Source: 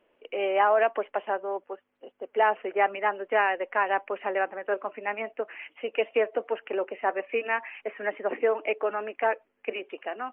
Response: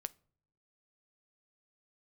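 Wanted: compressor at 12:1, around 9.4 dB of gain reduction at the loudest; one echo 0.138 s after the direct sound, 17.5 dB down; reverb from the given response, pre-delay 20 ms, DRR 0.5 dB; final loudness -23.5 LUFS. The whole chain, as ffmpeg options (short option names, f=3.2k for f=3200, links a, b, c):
-filter_complex "[0:a]acompressor=threshold=-27dB:ratio=12,aecho=1:1:138:0.133,asplit=2[a][b];[1:a]atrim=start_sample=2205,adelay=20[c];[b][c]afir=irnorm=-1:irlink=0,volume=2dB[d];[a][d]amix=inputs=2:normalize=0,volume=7.5dB"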